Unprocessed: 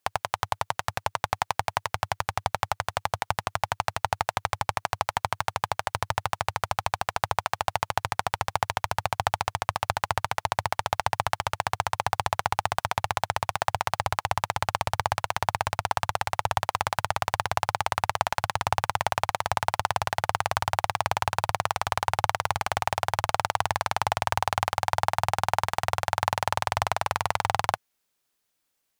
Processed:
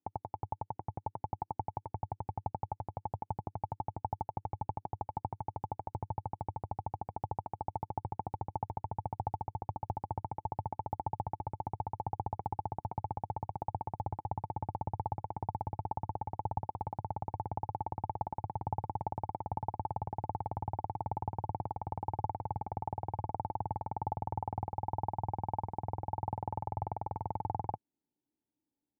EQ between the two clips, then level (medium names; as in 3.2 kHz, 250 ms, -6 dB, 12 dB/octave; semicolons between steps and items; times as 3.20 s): cascade formant filter u; high-pass 94 Hz 6 dB/octave; bass shelf 240 Hz +11 dB; +3.5 dB